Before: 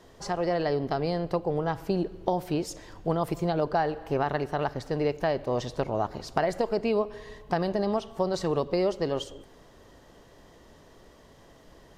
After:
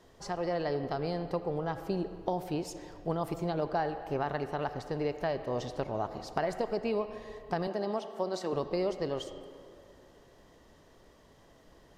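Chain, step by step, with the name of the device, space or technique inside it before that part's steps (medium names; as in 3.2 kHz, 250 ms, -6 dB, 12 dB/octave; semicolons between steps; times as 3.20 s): 7.67–8.53 s: high-pass 210 Hz 24 dB/octave; filtered reverb send (on a send: high-pass 270 Hz + low-pass 4.2 kHz + reverberation RT60 2.3 s, pre-delay 71 ms, DRR 10.5 dB); on the sum: trim -5.5 dB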